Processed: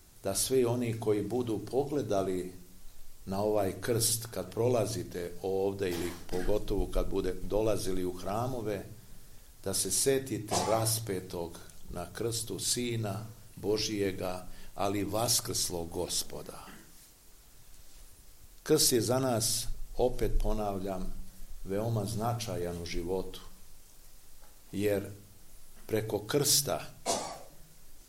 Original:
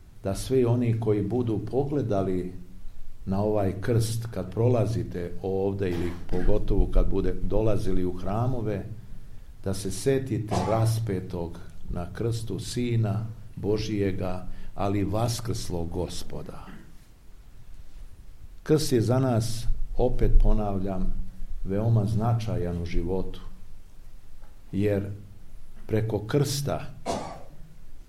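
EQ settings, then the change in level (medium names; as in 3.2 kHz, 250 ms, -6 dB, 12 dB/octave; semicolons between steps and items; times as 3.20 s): tone controls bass -9 dB, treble +12 dB; -2.5 dB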